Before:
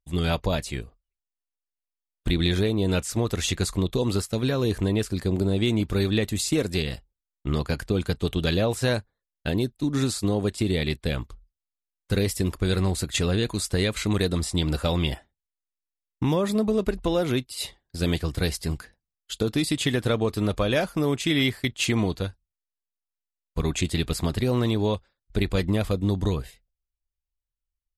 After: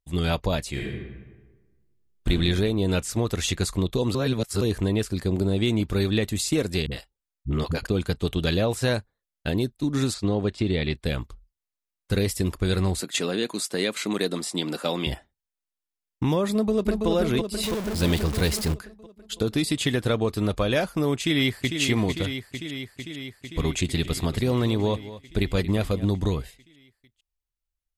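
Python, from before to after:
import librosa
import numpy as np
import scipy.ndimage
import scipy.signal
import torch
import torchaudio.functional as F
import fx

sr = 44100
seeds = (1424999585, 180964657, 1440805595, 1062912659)

y = fx.reverb_throw(x, sr, start_s=0.7, length_s=1.58, rt60_s=1.3, drr_db=-3.5)
y = fx.dispersion(y, sr, late='highs', ms=57.0, hz=320.0, at=(6.86, 7.87))
y = fx.lowpass(y, sr, hz=4500.0, slope=12, at=(10.14, 10.97))
y = fx.highpass(y, sr, hz=200.0, slope=24, at=(13.0, 15.07))
y = fx.echo_throw(y, sr, start_s=16.52, length_s=0.56, ms=330, feedback_pct=65, wet_db=-4.0)
y = fx.zero_step(y, sr, step_db=-27.0, at=(17.63, 18.74))
y = fx.echo_throw(y, sr, start_s=21.16, length_s=0.64, ms=450, feedback_pct=75, wet_db=-6.5)
y = fx.echo_single(y, sr, ms=229, db=-15.0, at=(24.03, 26.05), fade=0.02)
y = fx.edit(y, sr, fx.reverse_span(start_s=4.15, length_s=0.46), tone=tone)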